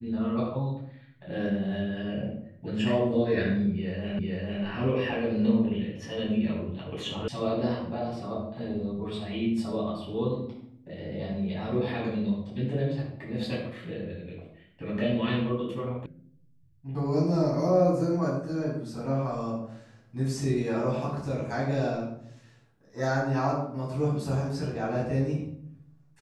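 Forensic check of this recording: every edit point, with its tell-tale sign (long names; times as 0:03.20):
0:04.19: the same again, the last 0.45 s
0:07.28: cut off before it has died away
0:16.06: cut off before it has died away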